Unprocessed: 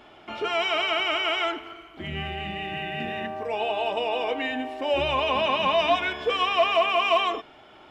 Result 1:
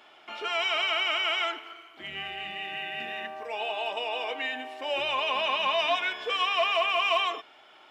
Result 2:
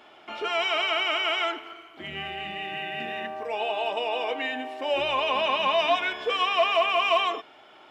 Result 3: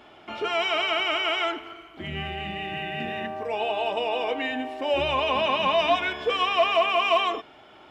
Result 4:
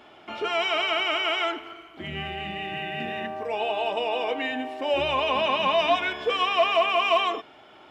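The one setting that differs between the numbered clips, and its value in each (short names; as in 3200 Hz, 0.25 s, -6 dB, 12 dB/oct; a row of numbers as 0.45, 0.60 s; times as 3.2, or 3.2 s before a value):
HPF, cutoff: 1200, 440, 46, 120 Hz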